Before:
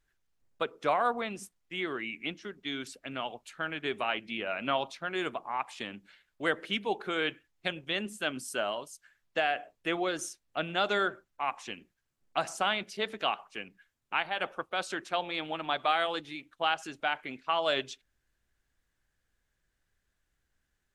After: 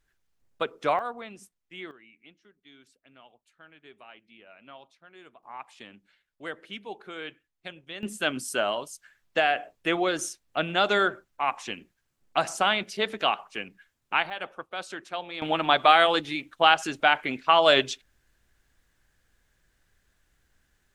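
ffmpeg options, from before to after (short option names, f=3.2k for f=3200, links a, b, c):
-af "asetnsamples=n=441:p=0,asendcmd='0.99 volume volume -6dB;1.91 volume volume -18dB;5.43 volume volume -7.5dB;8.03 volume volume 5.5dB;14.3 volume volume -2.5dB;15.42 volume volume 10dB',volume=3dB"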